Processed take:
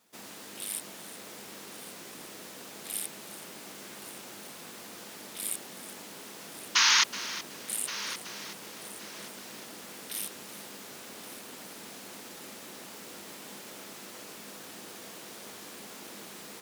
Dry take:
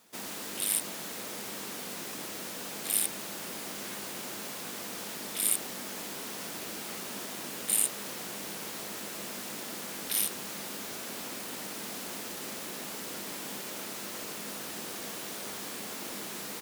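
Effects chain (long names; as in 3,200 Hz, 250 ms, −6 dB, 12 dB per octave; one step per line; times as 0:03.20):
sound drawn into the spectrogram noise, 0:06.75–0:07.04, 860–6,600 Hz −16 dBFS
on a send: echo machine with several playback heads 374 ms, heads first and third, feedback 44%, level −15 dB
on the sum: highs frequency-modulated by the lows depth 0.11 ms
level −5.5 dB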